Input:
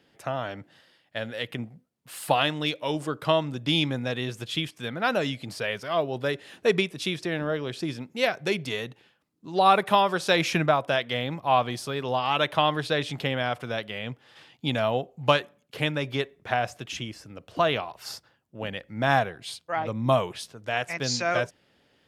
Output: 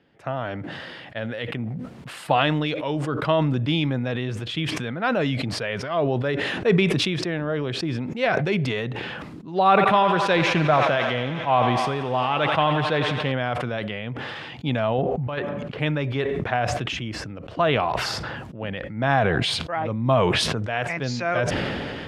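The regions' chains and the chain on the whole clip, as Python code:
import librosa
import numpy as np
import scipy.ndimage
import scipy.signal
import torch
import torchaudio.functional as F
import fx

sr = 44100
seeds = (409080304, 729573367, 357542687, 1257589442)

y = fx.chain(x, sr, fx.echo_thinned(ms=88, feedback_pct=84, hz=400.0, wet_db=-11),
    fx.doppler_dist(depth_ms=0.12), at=(9.68, 13.32))
y = fx.chain(y, sr, fx.lowpass(hz=2100.0, slope=6),
    fx.over_compress(threshold_db=-28.0, ratio=-0.5), at=(14.98, 15.8))
y = scipy.signal.sosfilt(scipy.signal.butter(2, 9700.0, 'lowpass', fs=sr, output='sos'), y)
y = fx.bass_treble(y, sr, bass_db=3, treble_db=-14)
y = fx.sustainer(y, sr, db_per_s=21.0)
y = y * librosa.db_to_amplitude(1.0)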